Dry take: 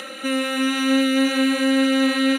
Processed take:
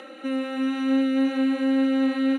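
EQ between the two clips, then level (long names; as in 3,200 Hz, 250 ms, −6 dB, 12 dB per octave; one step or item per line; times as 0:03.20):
four-pole ladder high-pass 240 Hz, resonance 45%
low-pass filter 1,700 Hz 6 dB per octave
parametric band 780 Hz +5.5 dB 0.3 octaves
+1.5 dB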